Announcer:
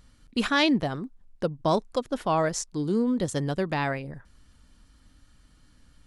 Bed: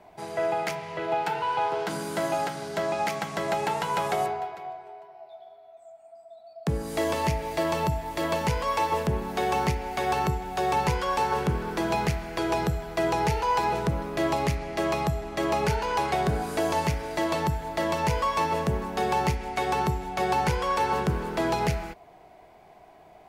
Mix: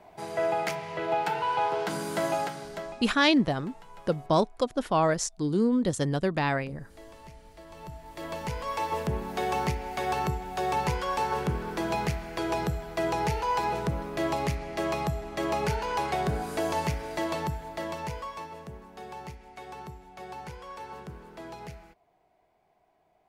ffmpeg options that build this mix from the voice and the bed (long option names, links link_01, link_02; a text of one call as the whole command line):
ffmpeg -i stem1.wav -i stem2.wav -filter_complex "[0:a]adelay=2650,volume=0.5dB[link_01];[1:a]volume=19.5dB,afade=type=out:start_time=2.29:duration=0.77:silence=0.0749894,afade=type=in:start_time=7.69:duration=1.48:silence=0.1,afade=type=out:start_time=17.11:duration=1.41:silence=0.211349[link_02];[link_01][link_02]amix=inputs=2:normalize=0" out.wav